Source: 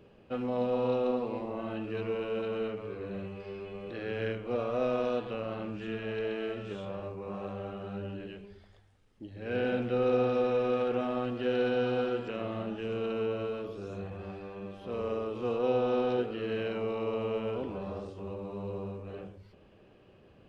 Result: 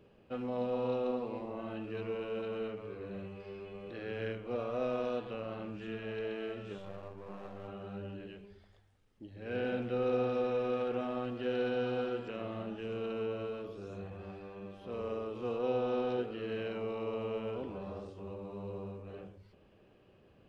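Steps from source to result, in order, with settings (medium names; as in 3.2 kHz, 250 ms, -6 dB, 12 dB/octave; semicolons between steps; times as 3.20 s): 6.78–7.68 s: partial rectifier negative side -12 dB; trim -4.5 dB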